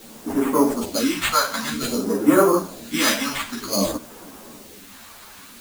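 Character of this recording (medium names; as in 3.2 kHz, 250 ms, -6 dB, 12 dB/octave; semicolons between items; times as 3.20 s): aliases and images of a low sample rate 5.5 kHz, jitter 0%; phasing stages 2, 0.53 Hz, lowest notch 330–4100 Hz; a quantiser's noise floor 8-bit, dither triangular; a shimmering, thickened sound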